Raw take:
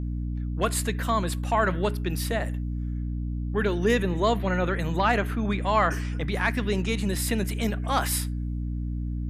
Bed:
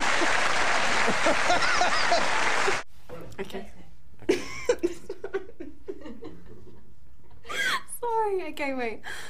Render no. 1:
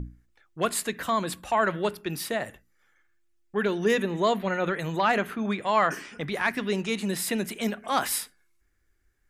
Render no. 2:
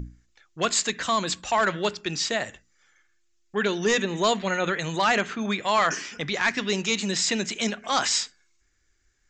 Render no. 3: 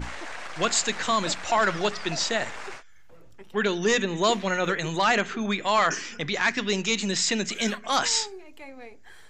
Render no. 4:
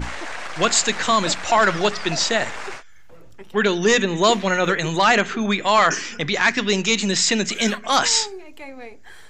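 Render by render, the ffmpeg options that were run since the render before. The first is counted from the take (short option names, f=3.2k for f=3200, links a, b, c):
-af "bandreject=f=60:t=h:w=6,bandreject=f=120:t=h:w=6,bandreject=f=180:t=h:w=6,bandreject=f=240:t=h:w=6,bandreject=f=300:t=h:w=6"
-af "crystalizer=i=4.5:c=0,aresample=16000,asoftclip=type=hard:threshold=-15dB,aresample=44100"
-filter_complex "[1:a]volume=-13.5dB[a];[0:a][a]amix=inputs=2:normalize=0"
-af "volume=6dB"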